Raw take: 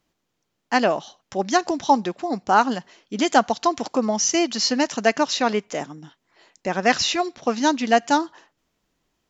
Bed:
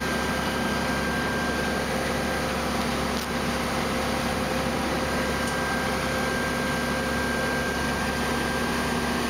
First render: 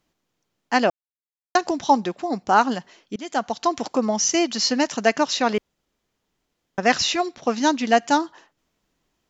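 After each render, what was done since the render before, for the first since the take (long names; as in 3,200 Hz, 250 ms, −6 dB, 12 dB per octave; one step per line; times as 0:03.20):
0:00.90–0:01.55: silence
0:03.16–0:03.75: fade in, from −20.5 dB
0:05.58–0:06.78: fill with room tone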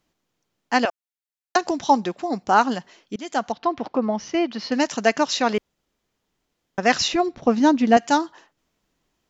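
0:00.85–0:01.56: high-pass filter 890 Hz
0:03.52–0:04.72: high-frequency loss of the air 320 metres
0:07.08–0:07.97: spectral tilt −3 dB per octave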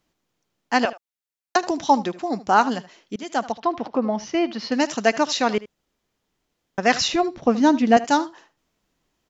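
single-tap delay 76 ms −17.5 dB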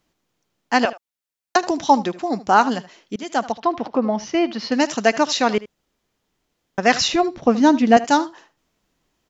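level +2.5 dB
brickwall limiter −2 dBFS, peak gain reduction 1 dB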